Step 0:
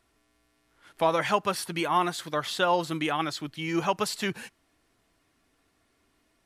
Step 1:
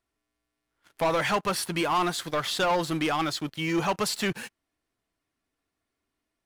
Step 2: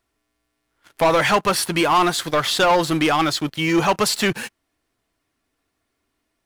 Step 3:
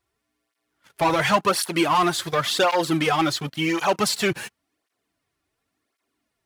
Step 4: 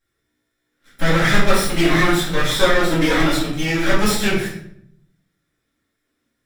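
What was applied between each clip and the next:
waveshaping leveller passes 3; trim -7.5 dB
peaking EQ 180 Hz -3 dB 0.29 oct; trim +8.5 dB
cancelling through-zero flanger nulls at 0.92 Hz, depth 4.7 ms
comb filter that takes the minimum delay 0.54 ms; simulated room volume 130 m³, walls mixed, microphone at 2.2 m; trim -3.5 dB

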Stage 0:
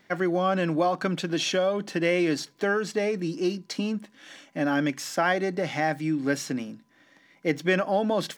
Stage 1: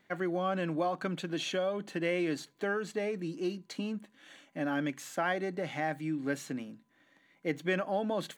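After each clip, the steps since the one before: peaking EQ 5.3 kHz -13.5 dB 0.2 oct; trim -7.5 dB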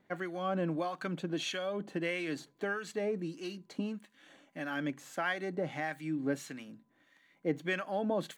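harmonic tremolo 1.6 Hz, depth 70%, crossover 1.1 kHz; trim +1.5 dB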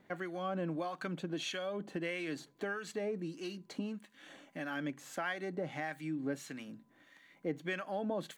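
compression 1.5:1, threshold -53 dBFS, peak gain reduction 10 dB; trim +4.5 dB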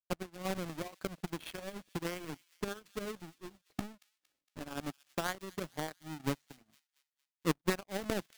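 square wave that keeps the level; power-law waveshaper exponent 3; feedback echo behind a high-pass 230 ms, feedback 46%, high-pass 2.8 kHz, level -17 dB; trim +5.5 dB

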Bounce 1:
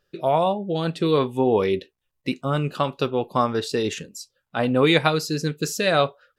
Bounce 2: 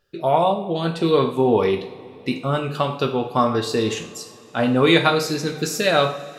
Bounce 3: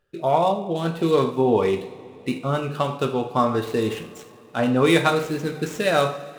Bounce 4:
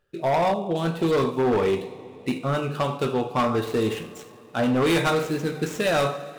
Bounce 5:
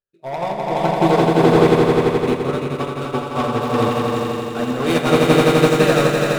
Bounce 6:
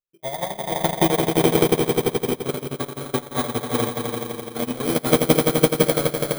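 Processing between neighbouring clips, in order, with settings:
two-slope reverb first 0.5 s, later 3.7 s, from -20 dB, DRR 3.5 dB; trim +1 dB
median filter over 9 samples; trim -1.5 dB
hard clipper -17.5 dBFS, distortion -11 dB
echo with a slow build-up 85 ms, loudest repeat 5, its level -3.5 dB; upward expansion 2.5:1, over -33 dBFS; trim +5 dB
bit-reversed sample order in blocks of 16 samples; transient shaper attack +10 dB, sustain -12 dB; trim -7.5 dB

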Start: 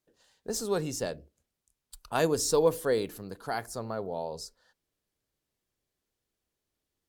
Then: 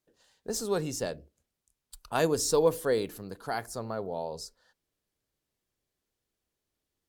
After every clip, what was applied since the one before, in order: no audible change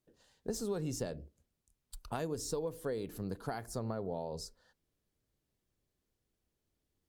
compression 12:1, threshold -34 dBFS, peak gain reduction 16.5 dB; bass shelf 390 Hz +9.5 dB; trim -3.5 dB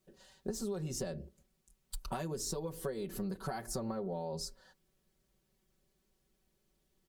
comb 5.3 ms, depth 98%; compression 6:1, threshold -39 dBFS, peak gain reduction 12 dB; trim +4 dB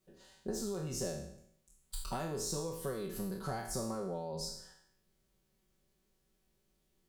spectral sustain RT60 0.70 s; trim -2 dB

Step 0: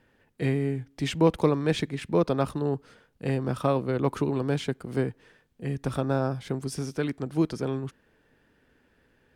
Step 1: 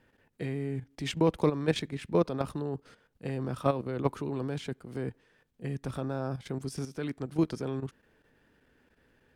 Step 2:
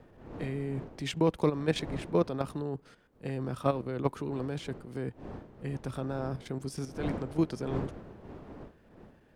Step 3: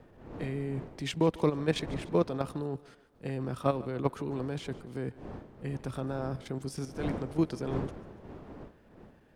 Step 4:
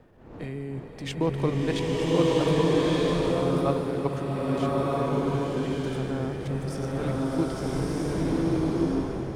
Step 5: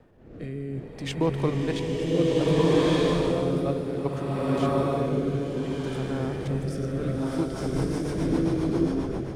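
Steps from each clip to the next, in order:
level held to a coarse grid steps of 11 dB
wind noise 410 Hz -44 dBFS; trim -1 dB
thinning echo 147 ms, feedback 51%, high-pass 320 Hz, level -19 dB
swelling reverb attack 1300 ms, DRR -6.5 dB
rotary cabinet horn 0.6 Hz, later 7.5 Hz, at 7.03 s; trim +2 dB

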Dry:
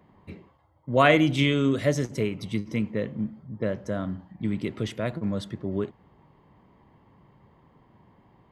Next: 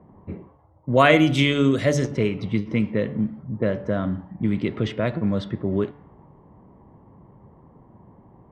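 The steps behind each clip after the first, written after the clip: de-hum 144.7 Hz, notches 39; level-controlled noise filter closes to 860 Hz, open at -19 dBFS; in parallel at +0.5 dB: compression, threshold -31 dBFS, peak gain reduction 16 dB; on the sum: trim +2 dB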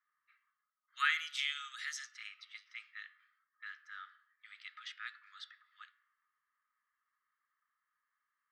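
rippled Chebyshev high-pass 1.2 kHz, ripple 6 dB; trim -7.5 dB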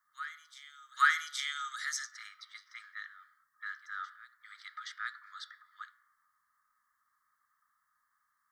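static phaser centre 1.1 kHz, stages 4; in parallel at -10 dB: saturation -32.5 dBFS, distortion -10 dB; on the sum: reverse echo 822 ms -16.5 dB; trim +7.5 dB

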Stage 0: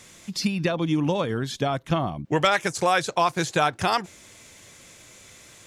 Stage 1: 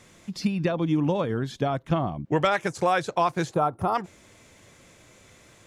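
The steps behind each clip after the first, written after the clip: time-frequency box 3.53–3.95 s, 1.4–9 kHz -15 dB; treble shelf 2.2 kHz -10 dB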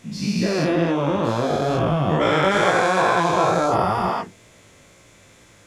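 every event in the spectrogram widened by 480 ms; chorus 2.2 Hz, delay 16.5 ms, depth 4.4 ms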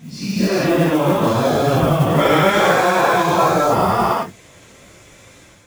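phase randomisation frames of 100 ms; level rider gain up to 6 dB; modulation noise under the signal 23 dB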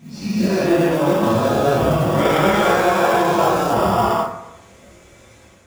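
in parallel at -8 dB: sample-and-hold 21×; on the sum: reverberation RT60 0.85 s, pre-delay 7 ms, DRR 0 dB; trim -6 dB

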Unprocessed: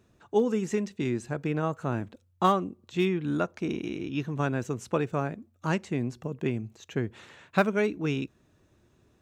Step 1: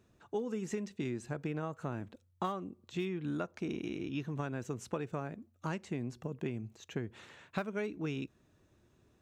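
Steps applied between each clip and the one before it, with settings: compression 5:1, threshold -29 dBFS, peak gain reduction 12 dB; trim -4 dB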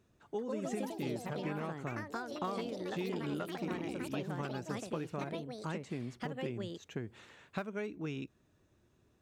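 ever faster or slower copies 220 ms, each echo +4 st, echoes 3; trim -2.5 dB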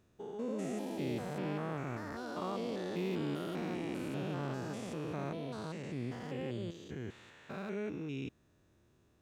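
spectrogram pixelated in time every 200 ms; trim +2.5 dB

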